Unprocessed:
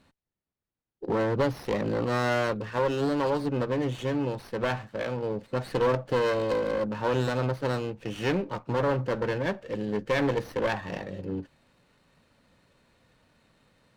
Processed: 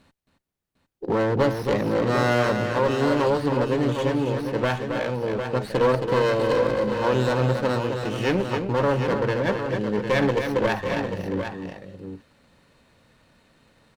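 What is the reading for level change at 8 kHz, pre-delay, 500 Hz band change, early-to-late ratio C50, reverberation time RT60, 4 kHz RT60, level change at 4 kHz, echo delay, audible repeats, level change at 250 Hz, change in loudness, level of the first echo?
can't be measured, no reverb audible, +5.5 dB, no reverb audible, no reverb audible, no reverb audible, +5.5 dB, 271 ms, 2, +5.5 dB, +5.5 dB, −6.5 dB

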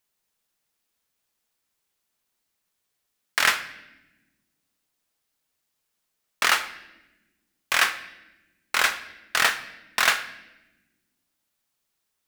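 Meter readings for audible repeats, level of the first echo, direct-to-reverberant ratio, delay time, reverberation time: no echo audible, no echo audible, 9.5 dB, no echo audible, 1.1 s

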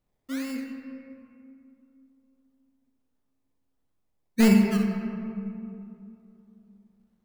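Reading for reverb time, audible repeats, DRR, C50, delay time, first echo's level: 2.8 s, no echo audible, 2.0 dB, 3.5 dB, no echo audible, no echo audible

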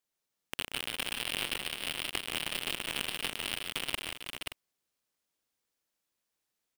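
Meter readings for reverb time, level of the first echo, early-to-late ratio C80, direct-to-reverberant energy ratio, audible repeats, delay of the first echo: no reverb audible, −8.5 dB, no reverb audible, no reverb audible, 6, 146 ms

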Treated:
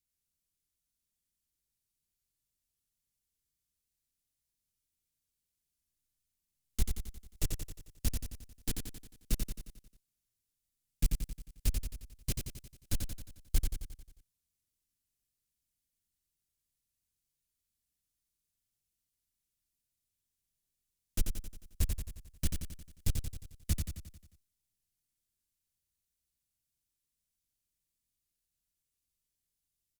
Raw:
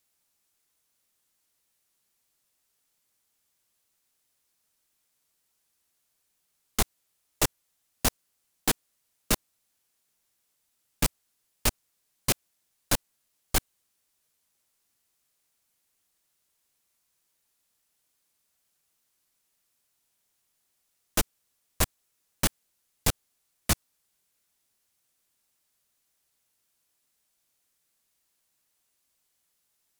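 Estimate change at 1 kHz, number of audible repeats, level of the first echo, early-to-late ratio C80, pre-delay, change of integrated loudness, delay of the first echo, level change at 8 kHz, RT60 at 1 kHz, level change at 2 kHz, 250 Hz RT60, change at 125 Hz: −23.0 dB, 6, −5.0 dB, no reverb audible, no reverb audible, −9.5 dB, 89 ms, −11.5 dB, no reverb audible, −17.0 dB, no reverb audible, −1.0 dB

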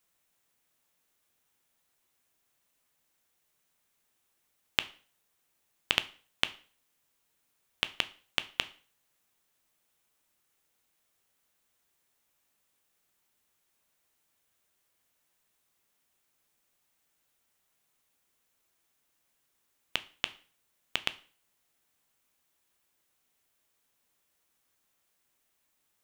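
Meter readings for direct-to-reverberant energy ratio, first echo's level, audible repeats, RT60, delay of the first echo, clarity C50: 12.0 dB, no echo audible, no echo audible, 0.40 s, no echo audible, 19.0 dB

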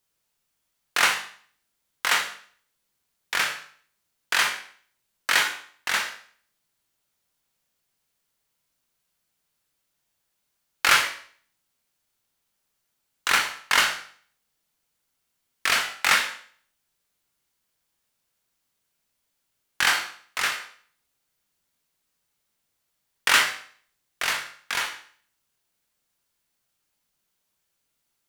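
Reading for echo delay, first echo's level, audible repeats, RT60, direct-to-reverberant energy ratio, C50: no echo audible, no echo audible, no echo audible, 0.50 s, 2.5 dB, 8.0 dB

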